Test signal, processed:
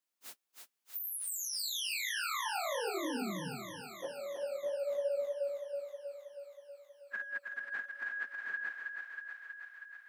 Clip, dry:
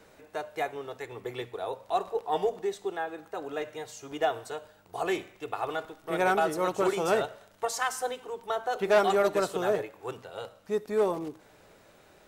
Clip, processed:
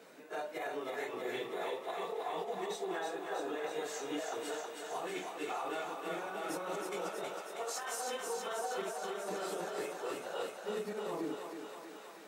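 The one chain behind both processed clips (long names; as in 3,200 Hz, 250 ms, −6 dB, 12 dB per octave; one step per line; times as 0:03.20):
random phases in long frames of 100 ms
compressor whose output falls as the input rises −34 dBFS, ratio −1
brickwall limiter −26.5 dBFS
Butterworth high-pass 170 Hz 36 dB per octave
on a send: feedback echo with a high-pass in the loop 320 ms, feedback 76%, high-pass 430 Hz, level −4 dB
on the sum: level −4 dB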